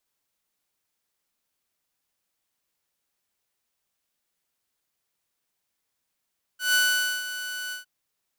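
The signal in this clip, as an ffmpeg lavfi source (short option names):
-f lavfi -i "aevalsrc='0.168*(2*mod(1490*t,1)-1)':d=1.258:s=44100,afade=t=in:d=0.15,afade=t=out:st=0.15:d=0.487:silence=0.224,afade=t=out:st=1.13:d=0.128"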